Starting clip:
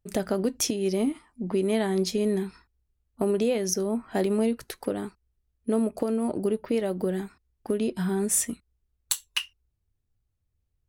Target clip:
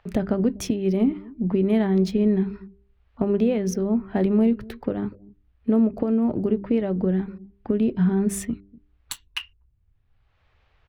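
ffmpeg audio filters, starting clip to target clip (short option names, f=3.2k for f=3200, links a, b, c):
-filter_complex "[0:a]bass=f=250:g=12,treble=f=4k:g=-8,bandreject=f=99.11:t=h:w=4,bandreject=f=198.22:t=h:w=4,bandreject=f=297.33:t=h:w=4,bandreject=f=396.44:t=h:w=4,acrossover=split=590|4100[a][b][c];[a]aecho=1:1:245:0.0841[d];[b]acompressor=mode=upward:threshold=-44dB:ratio=2.5[e];[c]aeval=exprs='sgn(val(0))*max(abs(val(0))-0.00447,0)':c=same[f];[d][e][f]amix=inputs=3:normalize=0"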